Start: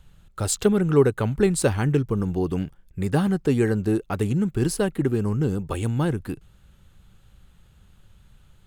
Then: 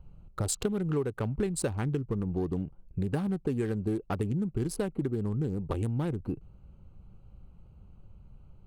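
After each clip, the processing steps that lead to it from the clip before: Wiener smoothing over 25 samples; compressor 6:1, threshold -29 dBFS, peak gain reduction 16 dB; gain +1.5 dB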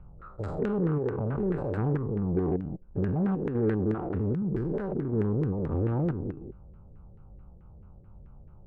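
stepped spectrum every 0.2 s; LFO low-pass saw down 4.6 Hz 410–1800 Hz; added harmonics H 6 -29 dB, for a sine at -20 dBFS; gain +4 dB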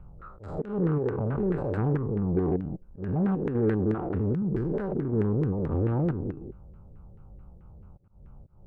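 auto swell 0.19 s; gain +1.5 dB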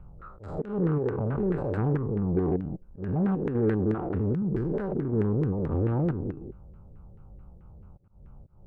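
nothing audible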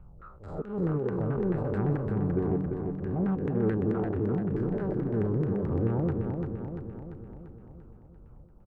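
feedback echo 0.343 s, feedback 57%, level -5 dB; gain -3 dB

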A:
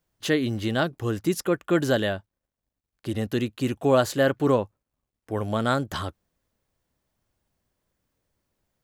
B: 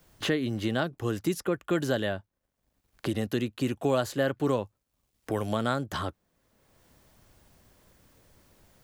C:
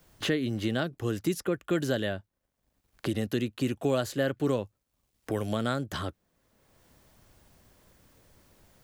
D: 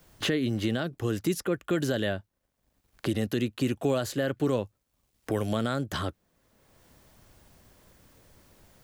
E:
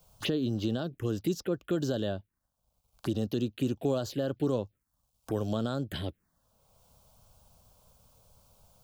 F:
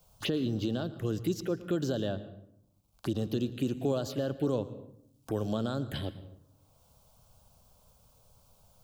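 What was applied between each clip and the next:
three-band squash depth 70%; gain -4.5 dB
dynamic EQ 940 Hz, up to -6 dB, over -45 dBFS, Q 1.6
limiter -19.5 dBFS, peak gain reduction 5.5 dB; gain +2.5 dB
envelope phaser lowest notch 300 Hz, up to 2100 Hz, full sweep at -25 dBFS; gain -2 dB
reverb RT60 0.70 s, pre-delay 0.113 s, DRR 14.5 dB; gain -1 dB

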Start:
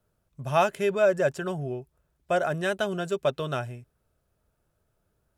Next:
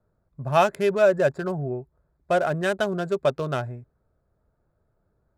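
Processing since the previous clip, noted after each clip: Wiener smoothing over 15 samples; gain +3.5 dB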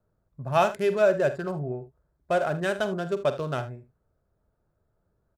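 early reflections 47 ms -12.5 dB, 77 ms -15.5 dB; gain -3 dB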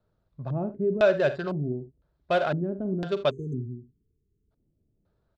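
LFO low-pass square 0.99 Hz 280–3900 Hz; spectral delete 3.3–4.51, 470–6100 Hz

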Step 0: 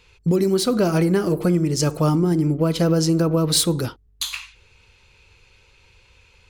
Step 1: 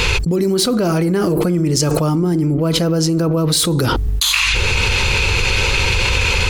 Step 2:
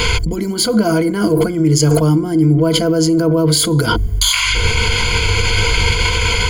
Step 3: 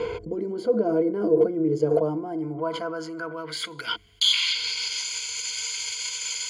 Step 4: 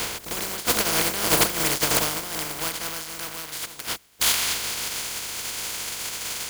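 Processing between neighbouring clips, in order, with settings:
fast leveller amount 100%
ripple EQ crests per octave 1.8, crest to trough 15 dB; gain -1 dB
band-pass sweep 460 Hz -> 6600 Hz, 1.78–5.12; gain -2.5 dB
spectral contrast lowered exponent 0.15

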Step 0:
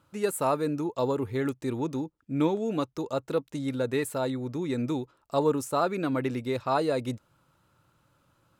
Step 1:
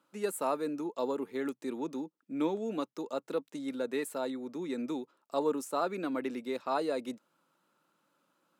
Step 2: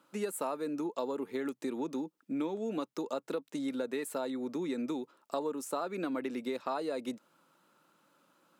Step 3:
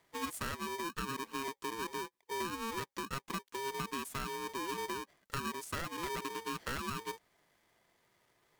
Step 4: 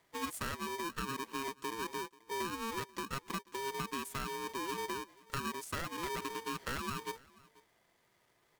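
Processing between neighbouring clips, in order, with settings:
steep high-pass 190 Hz 36 dB/oct; gain -5.5 dB
compressor 6:1, threshold -38 dBFS, peak gain reduction 12.5 dB; gain +6 dB
polarity switched at an audio rate 680 Hz; gain -4 dB
echo 0.486 s -23.5 dB

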